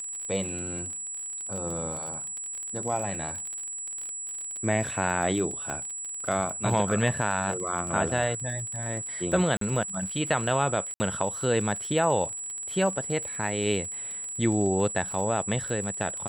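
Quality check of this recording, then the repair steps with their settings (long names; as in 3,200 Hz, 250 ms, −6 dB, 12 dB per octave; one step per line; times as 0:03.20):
surface crackle 36 per second −32 dBFS
whistle 7,800 Hz −33 dBFS
0:05.70: click −20 dBFS
0:09.57–0:09.61: drop-out 43 ms
0:10.94–0:11.00: drop-out 60 ms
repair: click removal
notch filter 7,800 Hz, Q 30
repair the gap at 0:09.57, 43 ms
repair the gap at 0:10.94, 60 ms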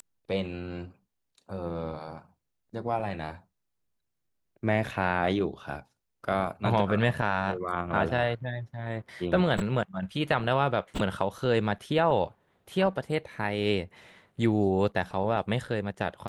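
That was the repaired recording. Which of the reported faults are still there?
whistle 7,800 Hz
0:05.70: click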